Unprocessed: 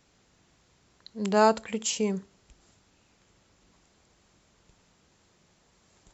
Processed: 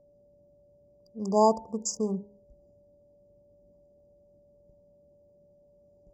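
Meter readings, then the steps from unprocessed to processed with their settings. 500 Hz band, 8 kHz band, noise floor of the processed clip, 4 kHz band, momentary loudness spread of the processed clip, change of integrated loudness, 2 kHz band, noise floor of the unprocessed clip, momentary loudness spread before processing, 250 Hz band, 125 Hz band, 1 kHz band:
-0.5 dB, n/a, -62 dBFS, -8.5 dB, 13 LU, -1.0 dB, under -40 dB, -66 dBFS, 14 LU, -1.0 dB, -1.0 dB, -1.0 dB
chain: Wiener smoothing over 41 samples; de-hum 68.36 Hz, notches 14; whine 580 Hz -59 dBFS; brick-wall FIR band-stop 1200–4700 Hz

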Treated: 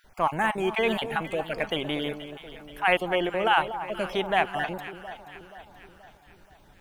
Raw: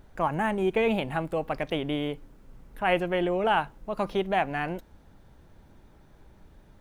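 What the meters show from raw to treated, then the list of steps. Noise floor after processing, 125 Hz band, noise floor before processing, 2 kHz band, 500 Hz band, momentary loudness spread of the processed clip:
-56 dBFS, -3.5 dB, -56 dBFS, +4.5 dB, -0.5 dB, 18 LU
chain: random spectral dropouts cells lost 23%; tilt shelf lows -5 dB, about 740 Hz; on a send: echo with dull and thin repeats by turns 0.239 s, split 1100 Hz, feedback 70%, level -10 dB; on the sum: gain +1.5 dB

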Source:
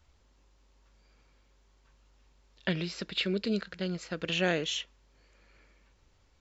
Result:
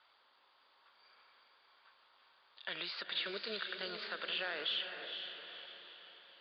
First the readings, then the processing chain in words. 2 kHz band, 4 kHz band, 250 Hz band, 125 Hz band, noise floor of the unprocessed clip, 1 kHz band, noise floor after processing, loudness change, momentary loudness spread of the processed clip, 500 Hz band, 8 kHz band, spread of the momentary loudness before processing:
-4.5 dB, -2.0 dB, -20.5 dB, -26.5 dB, -66 dBFS, -4.5 dB, -70 dBFS, -7.5 dB, 15 LU, -11.5 dB, n/a, 8 LU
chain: HPF 750 Hz 12 dB/oct; in parallel at 0 dB: compressor, threshold -45 dBFS, peak gain reduction 17 dB; on the sum: limiter -27 dBFS, peak gain reduction 11.5 dB; rippled Chebyshev low-pass 4800 Hz, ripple 6 dB; on a send: diffused feedback echo 0.467 s, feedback 47%, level -6.5 dB; on the sum: gain +2.5 dB

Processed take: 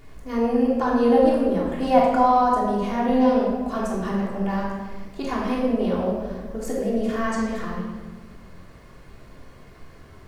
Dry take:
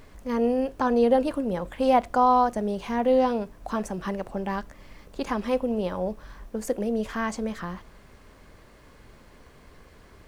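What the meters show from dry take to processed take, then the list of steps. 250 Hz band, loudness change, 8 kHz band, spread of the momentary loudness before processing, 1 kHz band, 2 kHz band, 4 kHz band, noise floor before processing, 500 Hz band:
+5.5 dB, +3.5 dB, +1.0 dB, 14 LU, +3.0 dB, +3.0 dB, +2.0 dB, -53 dBFS, +3.0 dB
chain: shoebox room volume 1200 m³, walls mixed, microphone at 3.3 m; gain -3.5 dB

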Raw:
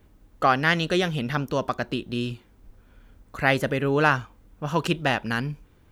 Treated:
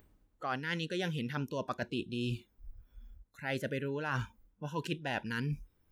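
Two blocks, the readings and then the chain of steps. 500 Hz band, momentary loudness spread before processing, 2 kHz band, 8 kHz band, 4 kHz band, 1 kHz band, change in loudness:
-12.5 dB, 12 LU, -13.5 dB, -11.5 dB, -11.5 dB, -15.0 dB, -12.5 dB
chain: reverse; compressor 16:1, threshold -33 dBFS, peak gain reduction 20 dB; reverse; spectral noise reduction 19 dB; upward compressor, threshold -58 dBFS; gain +1.5 dB

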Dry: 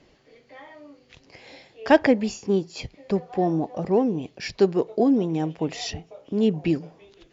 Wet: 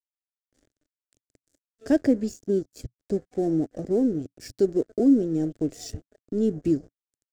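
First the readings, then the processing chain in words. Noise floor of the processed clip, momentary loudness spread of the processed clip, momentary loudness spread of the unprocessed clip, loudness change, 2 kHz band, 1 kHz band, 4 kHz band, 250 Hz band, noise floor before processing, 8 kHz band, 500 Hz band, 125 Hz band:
under -85 dBFS, 17 LU, 13 LU, -1.5 dB, under -10 dB, -15.5 dB, under -10 dB, 0.0 dB, -59 dBFS, n/a, -3.5 dB, -3.5 dB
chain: in parallel at -1 dB: limiter -15.5 dBFS, peak gain reduction 11.5 dB; on the sum: crossover distortion -33 dBFS; EQ curve 120 Hz 0 dB, 180 Hz -9 dB, 280 Hz 0 dB, 650 Hz -10 dB, 930 Hz -26 dB, 1600 Hz -14 dB, 2500 Hz -22 dB, 3800 Hz -16 dB, 7600 Hz 0 dB, 11000 Hz -8 dB; gain -1 dB

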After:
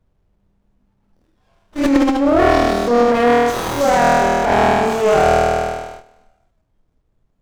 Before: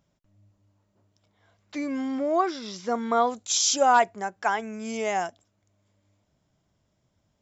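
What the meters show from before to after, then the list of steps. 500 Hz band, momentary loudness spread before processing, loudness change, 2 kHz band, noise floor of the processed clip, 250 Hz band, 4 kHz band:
+14.0 dB, 14 LU, +10.5 dB, +11.0 dB, -65 dBFS, +14.0 dB, +3.5 dB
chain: on a send: flutter echo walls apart 4.3 m, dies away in 1.5 s; on the sum: transient shaper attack -8 dB, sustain +11 dB; added noise brown -49 dBFS; in parallel at +1.5 dB: compressor, threshold -28 dBFS, peak gain reduction 17.5 dB; on the sum: spectral noise reduction 13 dB; dynamic EQ 450 Hz, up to +7 dB, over -30 dBFS, Q 0.81; vocal rider 0.5 s; gate -32 dBFS, range -10 dB; running maximum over 17 samples

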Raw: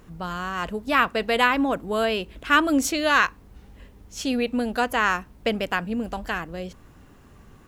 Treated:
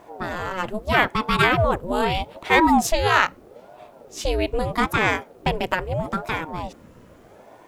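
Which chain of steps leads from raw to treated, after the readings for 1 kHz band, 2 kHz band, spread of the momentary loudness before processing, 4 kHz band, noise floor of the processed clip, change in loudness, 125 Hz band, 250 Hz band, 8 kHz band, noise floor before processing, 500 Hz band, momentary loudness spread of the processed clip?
+3.0 dB, +1.0 dB, 11 LU, +1.0 dB, -49 dBFS, +1.5 dB, +10.5 dB, -0.5 dB, +0.5 dB, -51 dBFS, +2.5 dB, 11 LU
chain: small resonant body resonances 340/790 Hz, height 9 dB; ring modulator with a swept carrier 420 Hz, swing 60%, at 0.79 Hz; gain +3.5 dB

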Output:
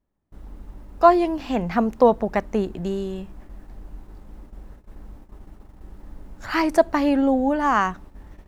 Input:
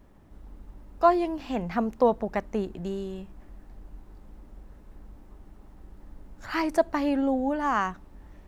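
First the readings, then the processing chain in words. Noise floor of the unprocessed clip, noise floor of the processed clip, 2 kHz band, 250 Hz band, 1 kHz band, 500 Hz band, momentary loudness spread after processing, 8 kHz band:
-52 dBFS, -52 dBFS, +6.0 dB, +6.0 dB, +6.0 dB, +6.0 dB, 11 LU, n/a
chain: gate -47 dBFS, range -28 dB; gain +6 dB

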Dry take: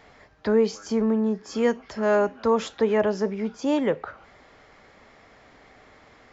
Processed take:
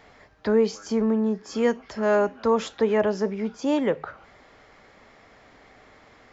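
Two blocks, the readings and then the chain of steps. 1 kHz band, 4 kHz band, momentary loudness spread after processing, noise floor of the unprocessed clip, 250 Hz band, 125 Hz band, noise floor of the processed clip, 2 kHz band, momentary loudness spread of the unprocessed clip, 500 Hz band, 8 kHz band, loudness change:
0.0 dB, 0.0 dB, 6 LU, -54 dBFS, 0.0 dB, 0.0 dB, -54 dBFS, 0.0 dB, 6 LU, 0.0 dB, n/a, 0.0 dB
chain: de-hum 75.61 Hz, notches 2

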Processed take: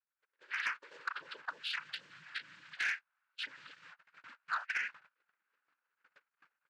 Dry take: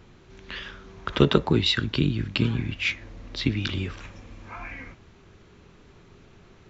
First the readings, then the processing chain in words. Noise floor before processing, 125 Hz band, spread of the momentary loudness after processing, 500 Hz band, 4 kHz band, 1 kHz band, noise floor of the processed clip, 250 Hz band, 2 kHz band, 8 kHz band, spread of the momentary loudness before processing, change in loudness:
-53 dBFS, under -40 dB, 19 LU, -33.0 dB, -15.5 dB, -8.0 dB, under -85 dBFS, under -40 dB, -4.5 dB, n/a, 20 LU, -13.5 dB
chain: spectral contrast raised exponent 3.7; compressor 16:1, threshold -38 dBFS, peak gain reduction 25 dB; air absorption 58 m; bit-crush 10-bit; doubler 34 ms -14 dB; limiter -38.5 dBFS, peak gain reduction 11.5 dB; noise vocoder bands 8; gate -51 dBFS, range -31 dB; ladder band-pass 1700 Hz, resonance 50%; AGC gain up to 12.5 dB; soft clip -38.5 dBFS, distortion -14 dB; gain +11.5 dB

